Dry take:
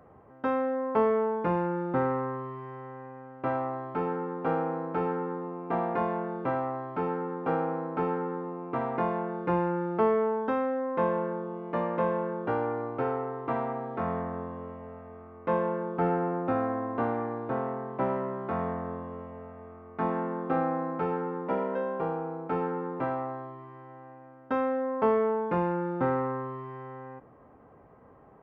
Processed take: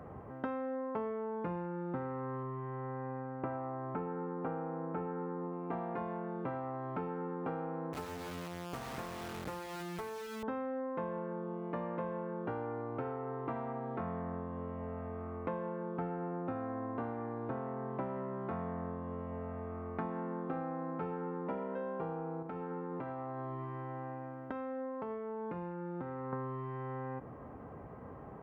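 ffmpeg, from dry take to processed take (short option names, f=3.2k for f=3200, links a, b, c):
-filter_complex "[0:a]asettb=1/sr,asplit=3[a][b][c];[a]atrim=end=2.434[d];[b]atrim=start=2.43:end=5.53,asetpts=PTS-STARTPTS,afade=t=in:d=0.004:c=qsin,afade=t=out:st=3.096:d=0.004:c=qsin,lowpass=2.1k[e];[c]atrim=start=5.526[f];[d][e]acrossfade=d=0.004:c1=hsin:c2=qsin[g];[g][f]acrossfade=d=0.004:c1=qsin:c2=hsin,asettb=1/sr,asplit=3[h][i][j];[h]atrim=end=7.934[k];[i]atrim=start=7.93:end=10.43,asetpts=PTS-STARTPTS,afade=t=in:d=0.004:c=qsin,afade=t=out:st=2.496:d=0.004:c=qsin,acrusher=bits=3:dc=4:mix=0:aa=0.000001[l];[j]atrim=start=10.426[m];[k][l]acrossfade=d=0.004:c1=hsin:c2=qsin[n];[n][m]acrossfade=d=0.004:c1=qsin:c2=hsin,asettb=1/sr,asplit=3[o][p][q];[o]atrim=end=22.424[r];[p]atrim=start=22.42:end=26.33,asetpts=PTS-STARTPTS,afade=t=in:d=0.004:c=qsin,afade=t=out:st=3.906:d=0.004:c=qsin,acompressor=threshold=-40dB:ratio=10:attack=3.2:release=140:knee=1:detection=peak[s];[q]atrim=start=26.326[t];[r][s]acrossfade=d=0.004:c1=hsin:c2=qsin[u];[u][t]acrossfade=d=0.004:c1=qsin:c2=hsin,bass=f=250:g=5,treble=f=4k:g=-3,acompressor=threshold=-42dB:ratio=6,highpass=42,volume=5dB"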